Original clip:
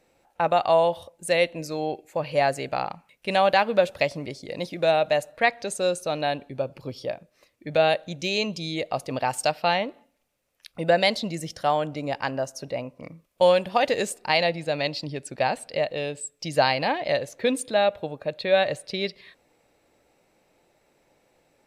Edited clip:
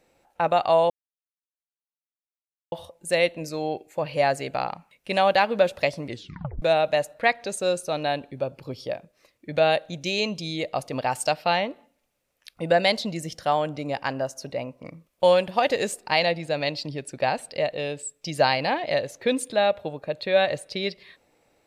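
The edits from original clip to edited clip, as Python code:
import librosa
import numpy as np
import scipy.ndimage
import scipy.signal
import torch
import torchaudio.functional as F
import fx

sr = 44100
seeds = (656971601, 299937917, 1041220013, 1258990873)

y = fx.edit(x, sr, fx.insert_silence(at_s=0.9, length_s=1.82),
    fx.tape_stop(start_s=4.26, length_s=0.54), tone=tone)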